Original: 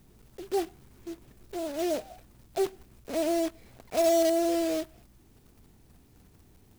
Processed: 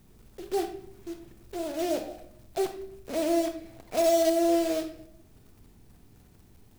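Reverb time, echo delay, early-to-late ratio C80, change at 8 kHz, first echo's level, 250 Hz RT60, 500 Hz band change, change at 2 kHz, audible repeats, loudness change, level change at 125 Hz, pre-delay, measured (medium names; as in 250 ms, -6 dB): 0.70 s, no echo, 13.0 dB, +0.5 dB, no echo, 0.85 s, +1.0 dB, +0.5 dB, no echo, +1.0 dB, no reading, 29 ms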